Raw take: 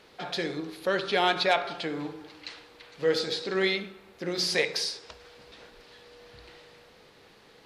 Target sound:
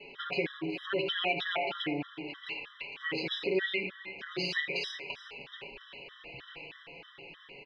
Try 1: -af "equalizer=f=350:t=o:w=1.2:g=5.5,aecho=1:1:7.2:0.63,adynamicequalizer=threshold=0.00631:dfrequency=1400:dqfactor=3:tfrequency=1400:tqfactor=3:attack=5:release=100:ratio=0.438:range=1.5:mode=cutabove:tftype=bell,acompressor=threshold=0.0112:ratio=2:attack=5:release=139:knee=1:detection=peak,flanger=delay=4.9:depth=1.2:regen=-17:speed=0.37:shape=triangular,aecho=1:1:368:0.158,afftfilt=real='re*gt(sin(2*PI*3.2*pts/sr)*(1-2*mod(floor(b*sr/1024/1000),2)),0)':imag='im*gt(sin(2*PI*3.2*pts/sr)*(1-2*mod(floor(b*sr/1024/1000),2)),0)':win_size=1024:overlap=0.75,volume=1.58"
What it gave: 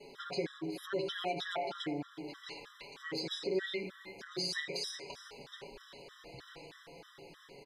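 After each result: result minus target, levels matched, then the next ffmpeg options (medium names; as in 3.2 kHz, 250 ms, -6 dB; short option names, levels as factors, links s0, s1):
2 kHz band -4.0 dB; compression: peak gain reduction +2 dB
-af "lowpass=f=2700:t=q:w=6.1,equalizer=f=350:t=o:w=1.2:g=5.5,aecho=1:1:7.2:0.63,adynamicequalizer=threshold=0.00631:dfrequency=1400:dqfactor=3:tfrequency=1400:tqfactor=3:attack=5:release=100:ratio=0.438:range=1.5:mode=cutabove:tftype=bell,acompressor=threshold=0.0112:ratio=2:attack=5:release=139:knee=1:detection=peak,flanger=delay=4.9:depth=1.2:regen=-17:speed=0.37:shape=triangular,aecho=1:1:368:0.158,afftfilt=real='re*gt(sin(2*PI*3.2*pts/sr)*(1-2*mod(floor(b*sr/1024/1000),2)),0)':imag='im*gt(sin(2*PI*3.2*pts/sr)*(1-2*mod(floor(b*sr/1024/1000),2)),0)':win_size=1024:overlap=0.75,volume=1.58"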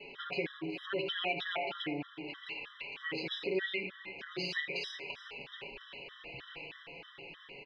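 compression: peak gain reduction +4 dB
-af "lowpass=f=2700:t=q:w=6.1,equalizer=f=350:t=o:w=1.2:g=5.5,aecho=1:1:7.2:0.63,adynamicequalizer=threshold=0.00631:dfrequency=1400:dqfactor=3:tfrequency=1400:tqfactor=3:attack=5:release=100:ratio=0.438:range=1.5:mode=cutabove:tftype=bell,acompressor=threshold=0.0266:ratio=2:attack=5:release=139:knee=1:detection=peak,flanger=delay=4.9:depth=1.2:regen=-17:speed=0.37:shape=triangular,aecho=1:1:368:0.158,afftfilt=real='re*gt(sin(2*PI*3.2*pts/sr)*(1-2*mod(floor(b*sr/1024/1000),2)),0)':imag='im*gt(sin(2*PI*3.2*pts/sr)*(1-2*mod(floor(b*sr/1024/1000),2)),0)':win_size=1024:overlap=0.75,volume=1.58"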